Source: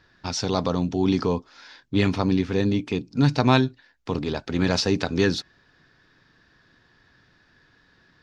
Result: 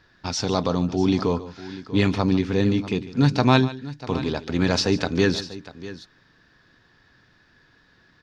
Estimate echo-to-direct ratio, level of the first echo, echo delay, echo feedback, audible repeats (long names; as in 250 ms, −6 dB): −13.0 dB, −16.5 dB, 146 ms, repeats not evenly spaced, 2